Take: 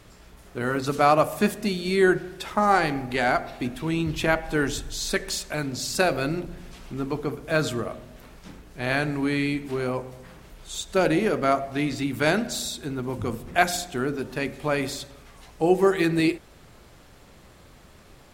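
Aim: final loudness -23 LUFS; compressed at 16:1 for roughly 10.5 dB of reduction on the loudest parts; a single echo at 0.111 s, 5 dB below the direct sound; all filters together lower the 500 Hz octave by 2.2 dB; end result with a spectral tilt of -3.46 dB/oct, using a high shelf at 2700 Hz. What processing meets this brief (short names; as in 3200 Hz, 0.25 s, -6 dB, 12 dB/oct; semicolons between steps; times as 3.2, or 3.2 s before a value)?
bell 500 Hz -3.5 dB; high shelf 2700 Hz +7 dB; compressor 16:1, threshold -25 dBFS; echo 0.111 s -5 dB; gain +6.5 dB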